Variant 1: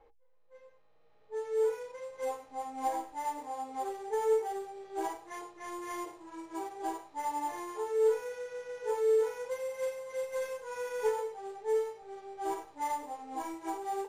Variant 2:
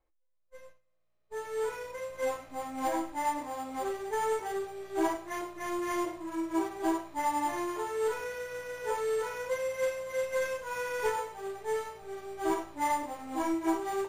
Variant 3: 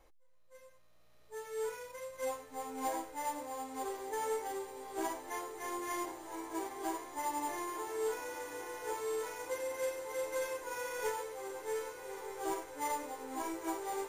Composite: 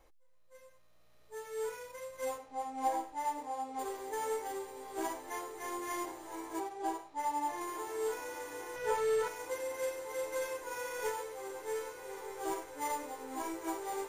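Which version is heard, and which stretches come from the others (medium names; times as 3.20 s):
3
2.38–3.79 s: from 1
6.60–7.61 s: from 1
8.76–9.28 s: from 2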